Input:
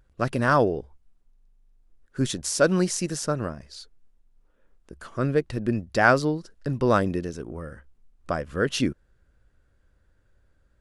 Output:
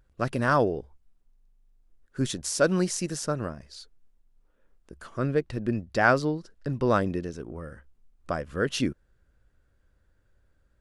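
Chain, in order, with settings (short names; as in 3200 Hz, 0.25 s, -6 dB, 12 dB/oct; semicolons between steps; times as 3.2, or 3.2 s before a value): 5.2–7.63 high shelf 9400 Hz -8 dB; gain -2.5 dB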